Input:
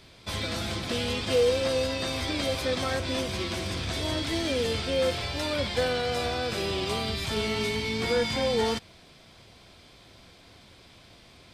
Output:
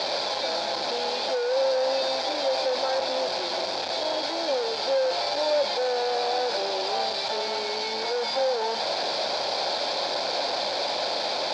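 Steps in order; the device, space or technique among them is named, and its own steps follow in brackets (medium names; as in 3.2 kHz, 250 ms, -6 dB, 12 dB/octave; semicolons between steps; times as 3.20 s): home computer beeper (one-bit comparator; cabinet simulation 520–4800 Hz, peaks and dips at 570 Hz +10 dB, 830 Hz +9 dB, 1.2 kHz -8 dB, 2 kHz -8 dB, 2.9 kHz -10 dB, 4.6 kHz +7 dB); trim +3.5 dB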